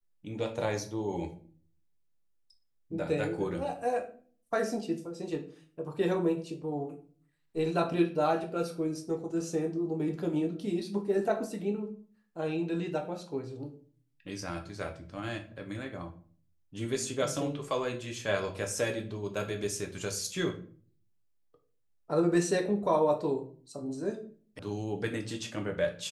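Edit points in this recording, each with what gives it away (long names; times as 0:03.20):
0:24.59: cut off before it has died away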